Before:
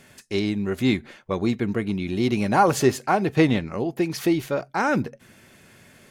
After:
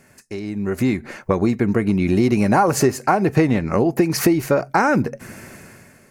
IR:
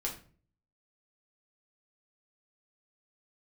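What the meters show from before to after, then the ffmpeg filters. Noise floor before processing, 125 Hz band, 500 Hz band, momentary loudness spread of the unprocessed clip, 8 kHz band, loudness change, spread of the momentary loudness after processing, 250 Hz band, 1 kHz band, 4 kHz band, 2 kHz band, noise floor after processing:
-54 dBFS, +5.5 dB, +4.5 dB, 8 LU, +6.5 dB, +4.5 dB, 12 LU, +4.5 dB, +3.5 dB, 0.0 dB, +3.5 dB, -52 dBFS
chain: -af "acompressor=threshold=-29dB:ratio=6,equalizer=f=3.4k:t=o:w=0.48:g=-14.5,dynaudnorm=f=150:g=9:m=16.5dB"

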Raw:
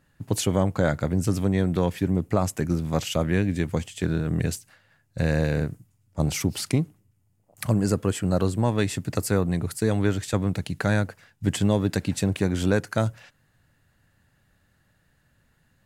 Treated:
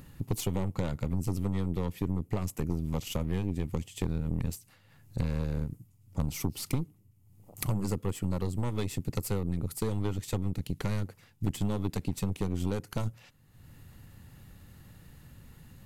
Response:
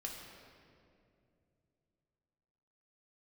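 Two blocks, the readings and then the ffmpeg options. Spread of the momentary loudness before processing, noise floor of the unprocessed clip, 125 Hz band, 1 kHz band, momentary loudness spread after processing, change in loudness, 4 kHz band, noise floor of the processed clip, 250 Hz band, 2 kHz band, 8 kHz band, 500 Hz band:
6 LU, -67 dBFS, -6.5 dB, -10.0 dB, 21 LU, -8.0 dB, -9.0 dB, -62 dBFS, -8.5 dB, -14.5 dB, -8.5 dB, -11.0 dB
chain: -af "acompressor=mode=upward:threshold=-41dB:ratio=2.5,lowshelf=f=340:g=6,aeval=exprs='0.562*(cos(1*acos(clip(val(0)/0.562,-1,1)))-cos(1*PI/2))+0.1*(cos(6*acos(clip(val(0)/0.562,-1,1)))-cos(6*PI/2))':c=same,acompressor=threshold=-27dB:ratio=3,equalizer=f=630:t=o:w=0.33:g=-7,equalizer=f=1.6k:t=o:w=0.33:g=-10,equalizer=f=12.5k:t=o:w=0.33:g=9,volume=-2.5dB"

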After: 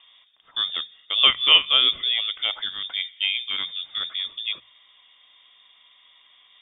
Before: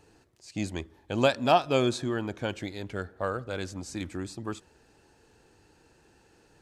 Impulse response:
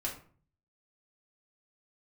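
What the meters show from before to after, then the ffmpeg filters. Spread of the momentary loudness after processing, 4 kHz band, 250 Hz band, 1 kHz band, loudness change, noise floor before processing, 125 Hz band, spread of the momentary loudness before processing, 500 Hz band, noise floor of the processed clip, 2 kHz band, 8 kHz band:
15 LU, +21.5 dB, under -15 dB, -4.0 dB, +9.0 dB, -62 dBFS, under -20 dB, 15 LU, -14.0 dB, -57 dBFS, +8.0 dB, under -35 dB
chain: -af "lowpass=f=3.1k:t=q:w=0.5098,lowpass=f=3.1k:t=q:w=0.6013,lowpass=f=3.1k:t=q:w=0.9,lowpass=f=3.1k:t=q:w=2.563,afreqshift=-3700,bandreject=f=60:t=h:w=6,bandreject=f=120:t=h:w=6,bandreject=f=180:t=h:w=6,volume=6dB"

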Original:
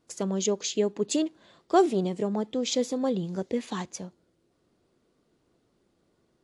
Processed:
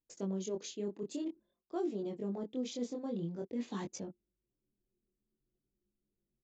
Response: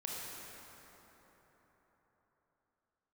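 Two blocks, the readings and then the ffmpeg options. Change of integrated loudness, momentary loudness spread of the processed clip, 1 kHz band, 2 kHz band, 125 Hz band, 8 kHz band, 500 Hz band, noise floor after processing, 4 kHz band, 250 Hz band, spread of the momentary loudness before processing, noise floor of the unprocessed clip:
-12.0 dB, 6 LU, -18.0 dB, -15.0 dB, -8.5 dB, -15.0 dB, -12.5 dB, under -85 dBFS, -15.5 dB, -9.5 dB, 12 LU, -72 dBFS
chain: -af "anlmdn=0.0158,equalizer=f=290:t=o:w=1.7:g=8,areverse,acompressor=threshold=-36dB:ratio=4,areverse,flanger=delay=19.5:depth=5.8:speed=0.5,aresample=16000,aresample=44100,volume=1dB"

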